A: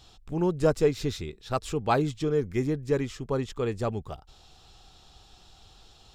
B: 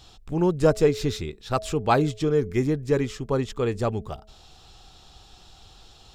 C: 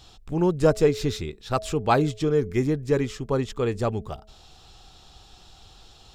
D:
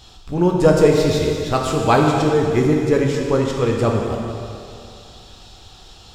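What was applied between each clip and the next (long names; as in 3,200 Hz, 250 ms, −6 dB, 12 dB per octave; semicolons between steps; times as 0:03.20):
hum removal 214.5 Hz, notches 3; level +4 dB
no processing that can be heard
dense smooth reverb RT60 2.5 s, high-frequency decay 1×, DRR −0.5 dB; level +4.5 dB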